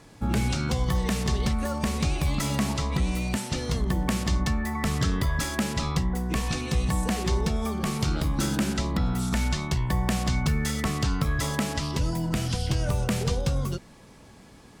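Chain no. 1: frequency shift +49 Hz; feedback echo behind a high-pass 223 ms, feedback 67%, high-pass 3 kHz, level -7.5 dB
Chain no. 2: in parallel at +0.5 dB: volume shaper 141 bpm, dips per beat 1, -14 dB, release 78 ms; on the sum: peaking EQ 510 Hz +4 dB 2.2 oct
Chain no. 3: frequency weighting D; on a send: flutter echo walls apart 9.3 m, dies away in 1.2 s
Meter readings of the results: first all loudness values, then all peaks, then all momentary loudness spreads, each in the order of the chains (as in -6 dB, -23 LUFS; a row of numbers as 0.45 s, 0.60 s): -26.5 LUFS, -20.0 LUFS, -21.5 LUFS; -9.5 dBFS, -6.5 dBFS, -3.5 dBFS; 3 LU, 2 LU, 3 LU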